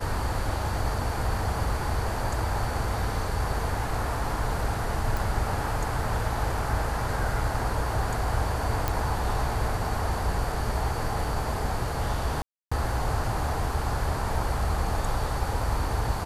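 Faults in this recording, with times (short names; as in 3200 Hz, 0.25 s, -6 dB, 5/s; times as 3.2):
5.17 pop
8.88 pop
12.42–12.71 gap 0.295 s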